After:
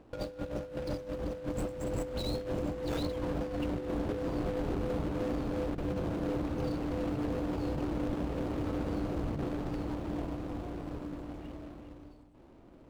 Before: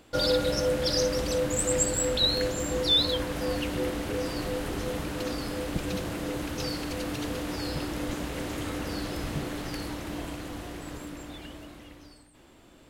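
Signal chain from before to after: median filter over 25 samples; high shelf 6100 Hz -8 dB; negative-ratio compressor -32 dBFS, ratio -0.5; gain -1 dB

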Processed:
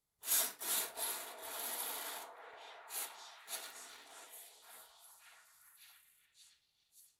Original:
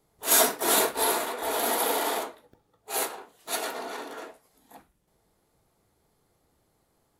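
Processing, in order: 3.62–4.17 G.711 law mismatch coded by A; passive tone stack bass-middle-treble 5-5-5; delay with a stepping band-pass 0.574 s, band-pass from 580 Hz, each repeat 0.7 oct, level -2.5 dB; gain -6 dB

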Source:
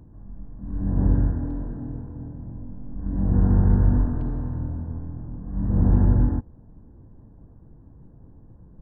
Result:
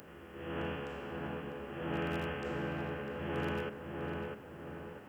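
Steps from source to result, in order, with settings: per-bin compression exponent 0.6; differentiator; on a send: darkening echo 1.126 s, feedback 45%, low-pass 1200 Hz, level -3 dB; on the sum: speed mistake 45 rpm record played at 78 rpm; gain +14 dB

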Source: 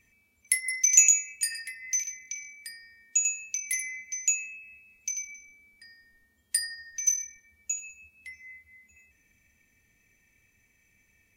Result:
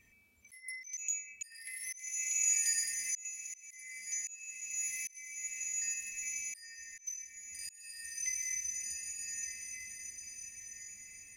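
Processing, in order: diffused feedback echo 1.356 s, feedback 42%, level -5.5 dB; auto swell 0.766 s

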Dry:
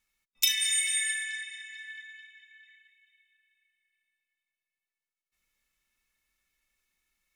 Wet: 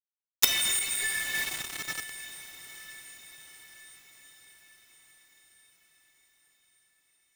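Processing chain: buzz 400 Hz, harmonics 35, -62 dBFS -4 dB/oct; companded quantiser 2-bit; on a send: diffused feedback echo 0.915 s, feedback 53%, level -15 dB; 0.79–1.35 on the sum: ensemble effect; gain -1.5 dB

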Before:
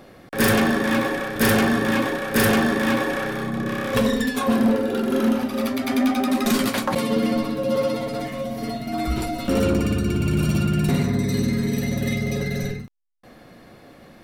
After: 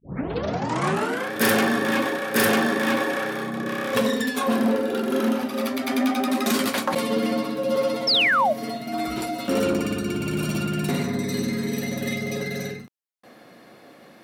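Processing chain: tape start at the beginning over 1.31 s; painted sound fall, 8.07–8.53, 560–5600 Hz -19 dBFS; Bessel high-pass 240 Hz, order 2

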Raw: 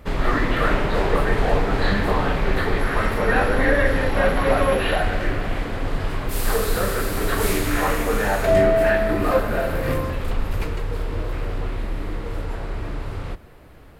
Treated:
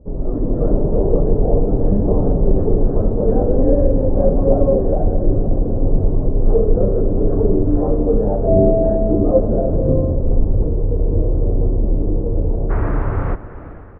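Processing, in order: inverse Chebyshev low-pass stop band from 3300 Hz, stop band 80 dB, from 12.69 s stop band from 8700 Hz; AGC gain up to 11 dB; feedback echo 0.388 s, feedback 45%, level -17 dB

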